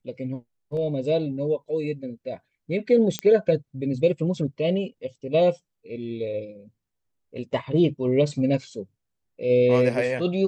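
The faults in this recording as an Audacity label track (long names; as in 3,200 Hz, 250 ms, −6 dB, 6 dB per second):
3.190000	3.190000	click −11 dBFS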